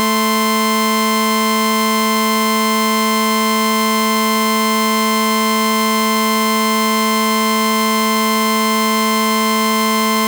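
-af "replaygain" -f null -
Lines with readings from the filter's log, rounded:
track_gain = -0.7 dB
track_peak = 0.316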